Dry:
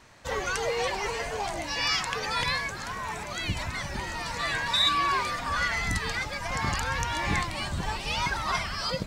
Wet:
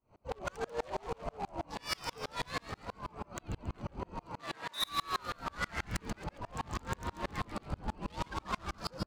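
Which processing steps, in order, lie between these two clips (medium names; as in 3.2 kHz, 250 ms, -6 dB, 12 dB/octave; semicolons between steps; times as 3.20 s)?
local Wiener filter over 25 samples; 4.27–4.81 s: high-pass 97 Hz -> 330 Hz 12 dB/octave; saturation -28 dBFS, distortion -10 dB; frequency-shifting echo 138 ms, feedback 52%, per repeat +140 Hz, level -6.5 dB; sawtooth tremolo in dB swelling 6.2 Hz, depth 34 dB; trim +3 dB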